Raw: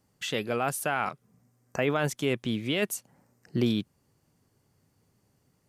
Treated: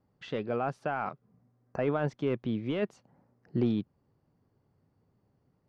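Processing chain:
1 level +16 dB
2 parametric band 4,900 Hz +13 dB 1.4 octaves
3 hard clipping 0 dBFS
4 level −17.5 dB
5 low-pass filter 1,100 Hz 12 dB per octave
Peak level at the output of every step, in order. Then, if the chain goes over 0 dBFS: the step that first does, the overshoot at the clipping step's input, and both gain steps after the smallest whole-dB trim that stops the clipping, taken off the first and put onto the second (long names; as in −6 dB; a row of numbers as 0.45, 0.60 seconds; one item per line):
+3.0, +5.0, 0.0, −17.5, −17.5 dBFS
step 1, 5.0 dB
step 1 +11 dB, step 4 −12.5 dB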